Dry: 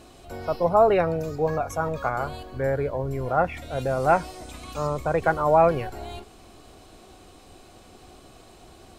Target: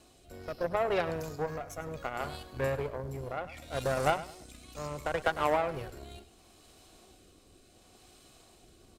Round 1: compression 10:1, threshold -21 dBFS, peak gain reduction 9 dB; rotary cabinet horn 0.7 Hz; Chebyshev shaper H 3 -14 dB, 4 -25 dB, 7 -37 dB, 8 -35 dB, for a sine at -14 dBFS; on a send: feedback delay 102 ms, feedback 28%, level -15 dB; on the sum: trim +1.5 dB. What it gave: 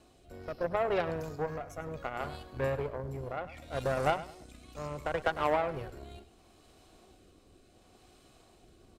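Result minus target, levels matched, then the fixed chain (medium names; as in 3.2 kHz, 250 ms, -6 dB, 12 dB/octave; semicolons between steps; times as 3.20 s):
8 kHz band -6.0 dB
compression 10:1, threshold -21 dBFS, peak gain reduction 9 dB; treble shelf 3.2 kHz +8 dB; rotary cabinet horn 0.7 Hz; Chebyshev shaper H 3 -14 dB, 4 -25 dB, 7 -37 dB, 8 -35 dB, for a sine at -14 dBFS; on a send: feedback delay 102 ms, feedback 28%, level -15 dB; on the sum: trim +1.5 dB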